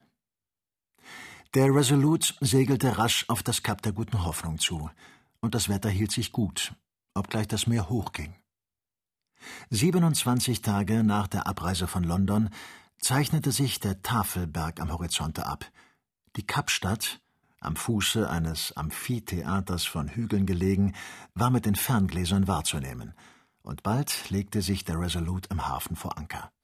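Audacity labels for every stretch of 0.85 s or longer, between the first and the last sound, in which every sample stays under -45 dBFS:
8.340000	9.420000	silence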